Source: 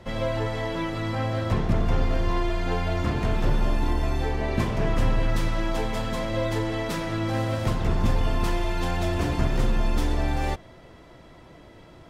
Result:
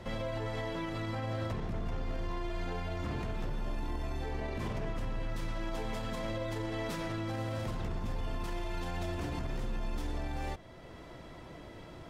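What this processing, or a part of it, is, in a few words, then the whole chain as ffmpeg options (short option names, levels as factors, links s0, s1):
stacked limiters: -af "alimiter=limit=0.158:level=0:latency=1:release=48,alimiter=limit=0.0708:level=0:latency=1:release=483,alimiter=level_in=1.58:limit=0.0631:level=0:latency=1:release=46,volume=0.631"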